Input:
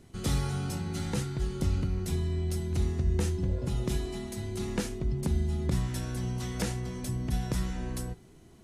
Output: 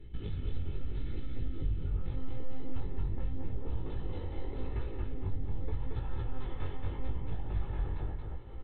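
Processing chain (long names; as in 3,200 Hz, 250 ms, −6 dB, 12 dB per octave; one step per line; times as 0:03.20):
parametric band 950 Hz −9 dB 1.4 octaves, from 0:01.84 +8 dB
one-pitch LPC vocoder at 8 kHz 260 Hz
downward compressor 6 to 1, threshold −42 dBFS, peak gain reduction 19 dB
low-shelf EQ 180 Hz +10 dB
comb filter 2.3 ms, depth 52%
repeating echo 227 ms, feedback 28%, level −3 dB
chorus effect 0.82 Hz, delay 17.5 ms, depth 4.6 ms
level +1.5 dB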